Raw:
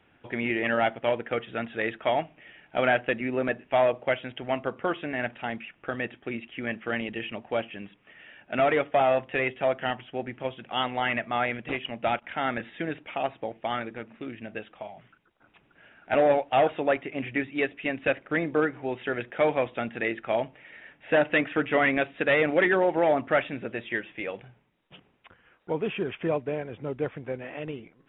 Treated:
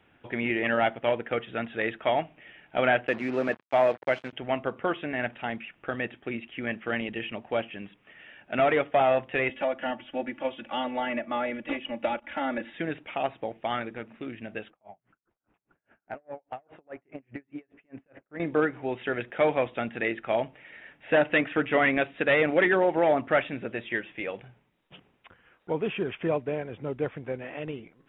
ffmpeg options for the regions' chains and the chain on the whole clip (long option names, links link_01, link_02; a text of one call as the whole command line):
ffmpeg -i in.wav -filter_complex "[0:a]asettb=1/sr,asplit=3[link_01][link_02][link_03];[link_01]atrim=end=3.074[link_04];[link_02]atrim=start=3.07:end=4.33,asetpts=PTS-STARTPTS,afade=type=in:duration=0.004:curve=qsin,afade=type=out:start_time=1.256:duration=0.004:curve=qsin,acrusher=bits=5:mix=0:aa=0.5,highpass=130,lowpass=2800[link_05];[link_03]atrim=start=4.326[link_06];[link_04][link_05]acrossfade=duration=0.004:curve1=hsin:curve2=qsin[link_07];[link_07][link_06]acrossfade=duration=0.004:curve1=qsin:curve2=hsin,asettb=1/sr,asplit=3[link_08][link_09][link_10];[link_08]atrim=end=9.494[link_11];[link_09]atrim=start=9.49:end=12.73,asetpts=PTS-STARTPTS,afade=type=in:duration=0.004:curve=qsin,afade=type=out:start_time=3.236:duration=0.004:curve=qsin,bandreject=frequency=390:width=11,acrossover=split=210|790[link_12][link_13][link_14];[link_12]acompressor=threshold=-51dB:ratio=4[link_15];[link_13]acompressor=threshold=-30dB:ratio=4[link_16];[link_14]acompressor=threshold=-37dB:ratio=4[link_17];[link_15][link_16][link_17]amix=inputs=3:normalize=0,aecho=1:1:3.5:0.98,atrim=end_sample=142884[link_18];[link_10]atrim=start=12.726[link_19];[link_11][link_18]acrossfade=duration=0.004:curve1=hsin:curve2=qsin[link_20];[link_20][link_19]acrossfade=duration=0.004:curve1=qsin:curve2=hsin,asettb=1/sr,asplit=3[link_21][link_22][link_23];[link_21]atrim=end=14.704[link_24];[link_22]atrim=start=14.7:end=18.4,asetpts=PTS-STARTPTS,afade=type=in:duration=0.004:curve=qsin,afade=type=out:start_time=3.696:duration=0.004:curve=qsin,lowpass=1500,acompressor=threshold=-31dB:ratio=8:attack=3.2:release=140:knee=1:detection=peak,aeval=exprs='val(0)*pow(10,-37*(0.5-0.5*cos(2*PI*4.9*n/s))/20)':channel_layout=same[link_25];[link_23]atrim=start=18.396[link_26];[link_24][link_25]acrossfade=duration=0.004:curve1=hsin:curve2=qsin[link_27];[link_27][link_26]acrossfade=duration=0.004:curve1=qsin:curve2=hsin" out.wav